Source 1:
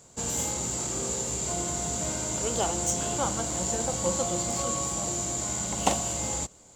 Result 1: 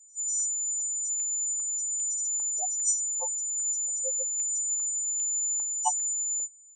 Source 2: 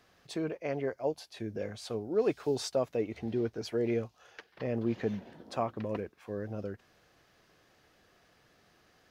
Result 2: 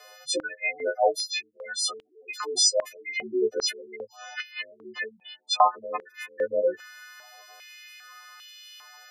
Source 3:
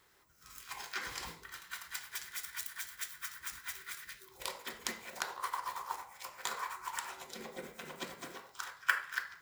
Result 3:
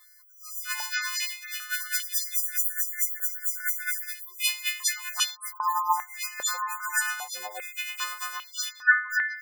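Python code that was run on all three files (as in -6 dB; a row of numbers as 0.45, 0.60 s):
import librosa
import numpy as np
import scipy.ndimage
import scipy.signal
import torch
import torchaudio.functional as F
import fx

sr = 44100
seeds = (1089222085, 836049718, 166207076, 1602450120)

y = fx.freq_snap(x, sr, grid_st=3)
y = fx.spec_gate(y, sr, threshold_db=-10, keep='strong')
y = fx.filter_held_highpass(y, sr, hz=2.5, low_hz=560.0, high_hz=3000.0)
y = y * 10.0 ** (-30 / 20.0) / np.sqrt(np.mean(np.square(y)))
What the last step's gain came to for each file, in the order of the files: -8.5, +9.5, +4.0 dB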